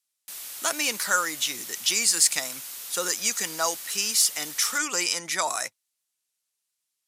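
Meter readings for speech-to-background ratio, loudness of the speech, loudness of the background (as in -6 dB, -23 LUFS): 11.0 dB, -24.5 LUFS, -35.5 LUFS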